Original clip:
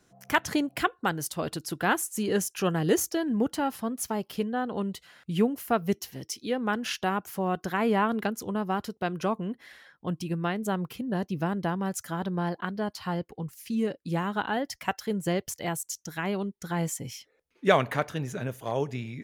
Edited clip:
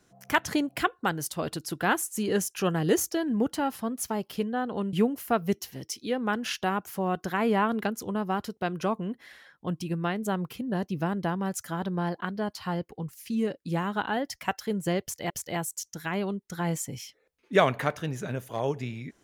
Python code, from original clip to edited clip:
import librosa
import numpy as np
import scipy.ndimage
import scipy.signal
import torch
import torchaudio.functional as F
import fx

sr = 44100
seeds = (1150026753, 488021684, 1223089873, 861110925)

y = fx.edit(x, sr, fx.cut(start_s=4.93, length_s=0.4),
    fx.repeat(start_s=15.42, length_s=0.28, count=2), tone=tone)